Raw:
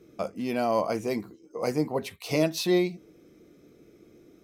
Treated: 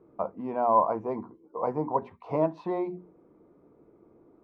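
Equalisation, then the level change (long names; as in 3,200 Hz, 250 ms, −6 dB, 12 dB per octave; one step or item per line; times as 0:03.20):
low-pass with resonance 970 Hz, resonance Q 5.7
mains-hum notches 60/120/180/240/300/360 Hz
−4.0 dB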